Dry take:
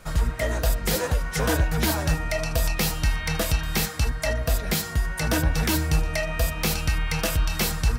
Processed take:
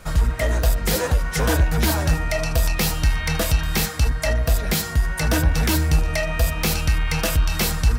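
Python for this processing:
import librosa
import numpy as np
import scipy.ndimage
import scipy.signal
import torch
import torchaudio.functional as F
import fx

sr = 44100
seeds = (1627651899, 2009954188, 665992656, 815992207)

p1 = fx.peak_eq(x, sr, hz=64.0, db=4.5, octaves=0.77)
p2 = np.clip(10.0 ** (23.0 / 20.0) * p1, -1.0, 1.0) / 10.0 ** (23.0 / 20.0)
y = p1 + (p2 * librosa.db_to_amplitude(-5.0))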